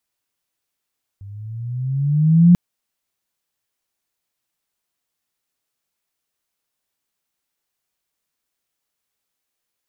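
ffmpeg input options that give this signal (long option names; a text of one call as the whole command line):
ffmpeg -f lavfi -i "aevalsrc='pow(10,(-5.5+28*(t/1.34-1))/20)*sin(2*PI*97.2*1.34/(10.5*log(2)/12)*(exp(10.5*log(2)/12*t/1.34)-1))':duration=1.34:sample_rate=44100" out.wav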